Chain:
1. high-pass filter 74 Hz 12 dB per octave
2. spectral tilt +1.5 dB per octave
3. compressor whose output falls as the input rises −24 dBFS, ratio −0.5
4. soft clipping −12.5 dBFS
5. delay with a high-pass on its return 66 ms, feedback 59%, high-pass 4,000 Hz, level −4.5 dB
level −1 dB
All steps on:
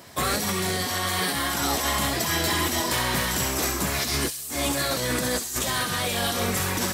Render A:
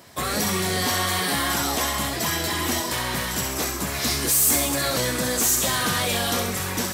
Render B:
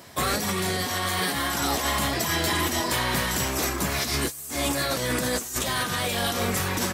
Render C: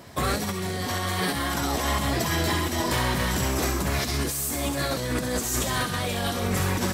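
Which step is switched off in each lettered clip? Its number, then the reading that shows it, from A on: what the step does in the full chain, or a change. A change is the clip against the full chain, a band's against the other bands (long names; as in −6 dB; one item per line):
3, change in crest factor +3.0 dB
5, echo-to-direct ratio −16.0 dB to none audible
2, 125 Hz band +5.0 dB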